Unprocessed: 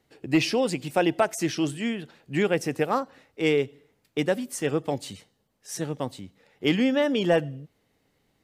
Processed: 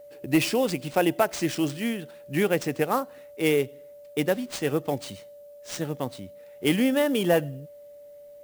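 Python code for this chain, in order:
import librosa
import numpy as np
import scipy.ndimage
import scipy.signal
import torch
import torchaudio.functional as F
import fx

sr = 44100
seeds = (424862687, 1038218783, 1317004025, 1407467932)

y = x + 10.0 ** (-44.0 / 20.0) * np.sin(2.0 * np.pi * 580.0 * np.arange(len(x)) / sr)
y = fx.sample_hold(y, sr, seeds[0], rate_hz=13000.0, jitter_pct=20)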